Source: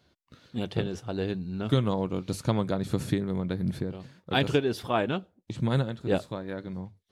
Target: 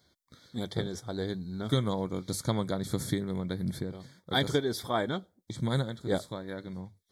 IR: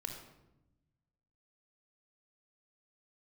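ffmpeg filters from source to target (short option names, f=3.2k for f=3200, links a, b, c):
-af "asuperstop=centerf=2700:order=20:qfactor=3.3,highshelf=f=3.6k:g=10,volume=-3.5dB"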